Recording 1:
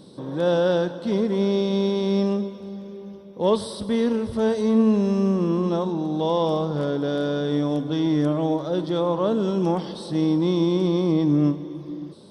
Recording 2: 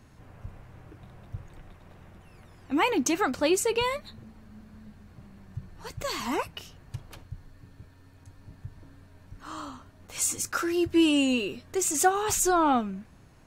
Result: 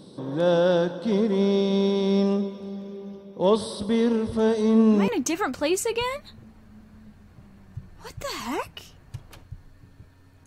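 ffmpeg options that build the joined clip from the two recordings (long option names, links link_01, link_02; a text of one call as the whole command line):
ffmpeg -i cue0.wav -i cue1.wav -filter_complex "[1:a]asplit=2[link_01][link_02];[0:a]apad=whole_dur=10.46,atrim=end=10.46,atrim=end=5.082[link_03];[link_02]atrim=start=2.878:end=8.26[link_04];[link_01]atrim=start=2.41:end=2.88,asetpts=PTS-STARTPTS,volume=-8.5dB,afade=type=in:duration=0.004:curve=hsin,afade=type=out:start_time=0.466:duration=0.004:curve=hsin,adelay=203301S[link_05];[link_03][link_04]acrossfade=duration=0.004:curve1=hsin:curve2=hsin[link_06];[link_06][link_05]amix=inputs=2:normalize=0" out.wav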